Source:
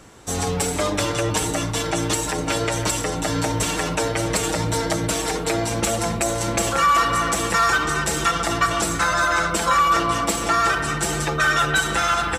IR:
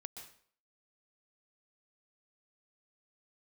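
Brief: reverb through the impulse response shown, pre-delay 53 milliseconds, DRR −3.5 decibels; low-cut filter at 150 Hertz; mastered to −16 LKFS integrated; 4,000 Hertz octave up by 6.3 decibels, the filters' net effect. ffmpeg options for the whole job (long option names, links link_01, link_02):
-filter_complex "[0:a]highpass=150,equalizer=frequency=4000:width_type=o:gain=8,asplit=2[link_01][link_02];[1:a]atrim=start_sample=2205,adelay=53[link_03];[link_02][link_03]afir=irnorm=-1:irlink=0,volume=8dB[link_04];[link_01][link_04]amix=inputs=2:normalize=0,volume=-2dB"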